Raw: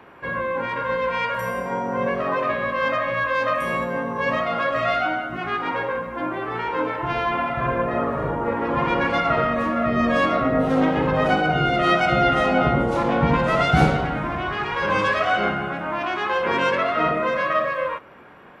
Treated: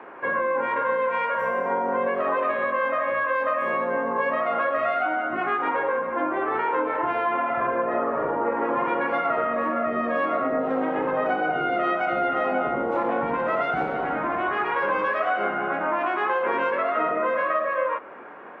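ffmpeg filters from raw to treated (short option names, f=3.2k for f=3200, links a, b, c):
-filter_complex "[0:a]asettb=1/sr,asplit=3[a][b][c];[a]atrim=end=1.884[d];[b]atrim=start=1.88:end=2.7,asetpts=PTS-STARTPTS,afade=t=in:d=0.004:c=qsin,afade=t=out:st=0.816:d=0.004:c=qsin,equalizer=f=3.6k:w=1.5:g=5[e];[c]atrim=start=2.696[f];[d][e]acrossfade=d=0.004:c1=hsin:c2=qsin[g];[g][f]acrossfade=d=0.004:c1=qsin:c2=hsin,equalizer=f=150:w=1.5:g=-2.5,acompressor=threshold=-26dB:ratio=6,acrossover=split=240 2300:gain=0.0891 1 0.0708[h][i][j];[h][i][j]amix=inputs=3:normalize=0,volume=6dB"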